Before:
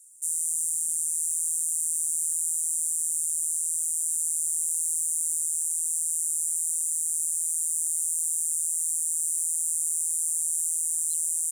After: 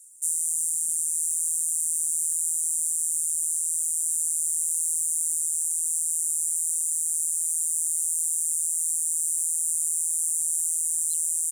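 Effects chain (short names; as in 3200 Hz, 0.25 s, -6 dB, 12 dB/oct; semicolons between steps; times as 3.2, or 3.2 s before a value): reverb removal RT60 0.56 s; 9.33–10.4 Butterworth band-stop 3100 Hz, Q 1.4; gain +3 dB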